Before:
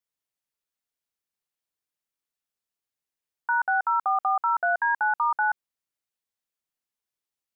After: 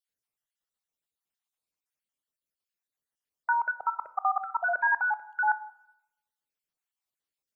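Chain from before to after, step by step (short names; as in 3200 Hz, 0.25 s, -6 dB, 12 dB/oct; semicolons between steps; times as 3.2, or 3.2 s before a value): random spectral dropouts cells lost 48%; on a send: reverb RT60 0.80 s, pre-delay 18 ms, DRR 14 dB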